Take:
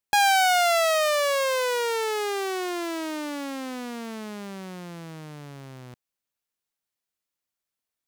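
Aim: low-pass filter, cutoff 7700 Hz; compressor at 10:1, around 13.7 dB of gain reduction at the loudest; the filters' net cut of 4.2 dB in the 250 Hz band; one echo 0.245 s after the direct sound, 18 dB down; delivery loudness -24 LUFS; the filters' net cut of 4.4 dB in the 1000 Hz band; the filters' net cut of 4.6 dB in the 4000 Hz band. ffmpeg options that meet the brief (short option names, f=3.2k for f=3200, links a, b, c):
-af "lowpass=7.7k,equalizer=f=250:t=o:g=-5.5,equalizer=f=1k:t=o:g=-6,equalizer=f=4k:t=o:g=-5.5,acompressor=threshold=-36dB:ratio=10,aecho=1:1:245:0.126,volume=15dB"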